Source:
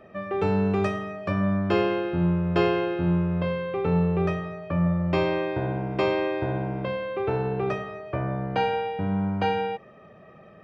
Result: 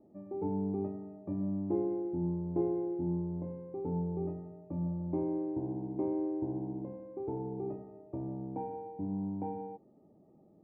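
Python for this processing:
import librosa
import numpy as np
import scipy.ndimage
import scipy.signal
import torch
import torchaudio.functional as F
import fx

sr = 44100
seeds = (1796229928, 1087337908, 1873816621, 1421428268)

y = fx.formant_cascade(x, sr, vowel='u')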